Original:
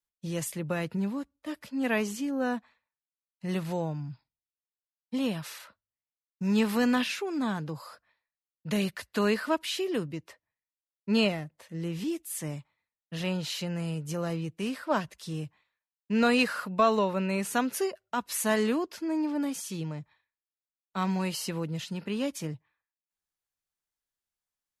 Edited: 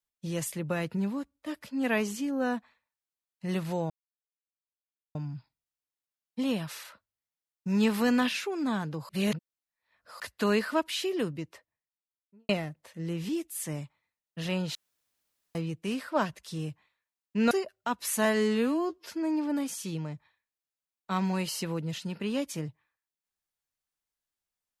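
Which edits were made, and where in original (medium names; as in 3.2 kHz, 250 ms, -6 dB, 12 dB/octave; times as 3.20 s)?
3.90 s: insert silence 1.25 s
7.84–8.95 s: reverse
10.15–11.24 s: studio fade out
13.50–14.30 s: room tone
16.26–17.78 s: delete
18.52–18.93 s: stretch 2×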